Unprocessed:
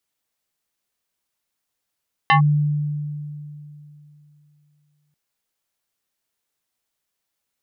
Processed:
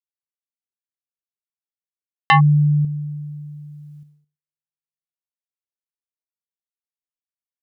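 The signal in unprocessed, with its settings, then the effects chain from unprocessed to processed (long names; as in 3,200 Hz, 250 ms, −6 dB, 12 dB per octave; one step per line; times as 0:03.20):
two-operator FM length 2.84 s, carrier 148 Hz, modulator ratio 6.49, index 2.6, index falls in 0.11 s linear, decay 3.01 s, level −10 dB
noise gate −49 dBFS, range −57 dB
in parallel at +2 dB: output level in coarse steps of 24 dB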